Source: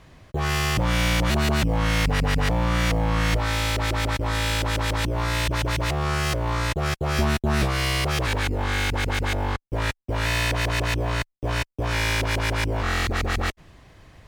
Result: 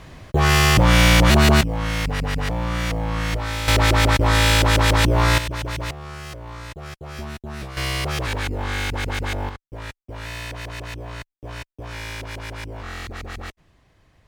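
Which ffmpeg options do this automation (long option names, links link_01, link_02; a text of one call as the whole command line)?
ffmpeg -i in.wav -af "asetnsamples=nb_out_samples=441:pad=0,asendcmd='1.61 volume volume -2dB;3.68 volume volume 8dB;5.38 volume volume -3dB;5.91 volume volume -11dB;7.77 volume volume -1dB;9.49 volume volume -9dB',volume=8dB" out.wav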